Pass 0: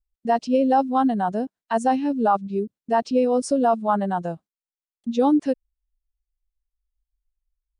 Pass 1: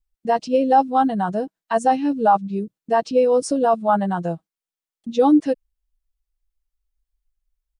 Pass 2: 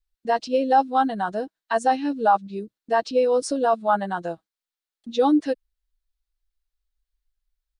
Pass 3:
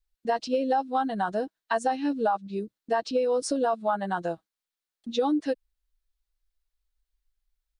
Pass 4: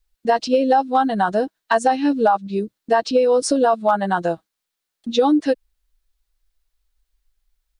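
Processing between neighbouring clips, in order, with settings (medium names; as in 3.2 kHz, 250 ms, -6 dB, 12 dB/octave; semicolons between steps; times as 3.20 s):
comb 6.2 ms, depth 52%; trim +1.5 dB
fifteen-band graphic EQ 160 Hz -11 dB, 1.6 kHz +5 dB, 4 kHz +7 dB; trim -3 dB
compression, threshold -22 dBFS, peak gain reduction 9 dB
hard clipper -16 dBFS, distortion -41 dB; trim +9 dB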